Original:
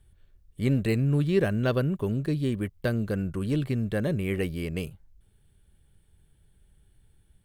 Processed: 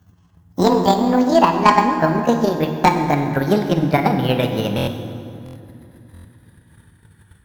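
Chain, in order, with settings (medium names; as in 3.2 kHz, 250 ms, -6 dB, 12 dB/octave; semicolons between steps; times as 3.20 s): pitch bend over the whole clip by +11 st ending unshifted; high-pass 75 Hz 24 dB/octave; high-order bell 1.3 kHz +10 dB 1.3 oct; level rider gain up to 6.5 dB; transient shaper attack +10 dB, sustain -5 dB; in parallel at +2.5 dB: compression, threshold -25 dBFS, peak gain reduction 19 dB; on the sum: sine folder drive 4 dB, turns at 5.5 dBFS; on a send at -5 dB: reverberation RT60 2.7 s, pre-delay 33 ms; on the sum: buffer glitch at 4.76/5.44/6.13 s, samples 1024, times 4; trim -10 dB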